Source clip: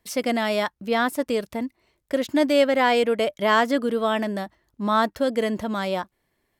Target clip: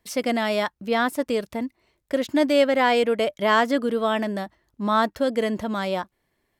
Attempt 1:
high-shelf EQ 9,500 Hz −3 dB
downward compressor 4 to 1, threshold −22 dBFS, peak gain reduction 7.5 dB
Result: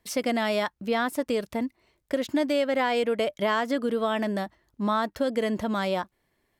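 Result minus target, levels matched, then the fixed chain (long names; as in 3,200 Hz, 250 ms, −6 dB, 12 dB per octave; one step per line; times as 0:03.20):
downward compressor: peak gain reduction +7.5 dB
high-shelf EQ 9,500 Hz −3 dB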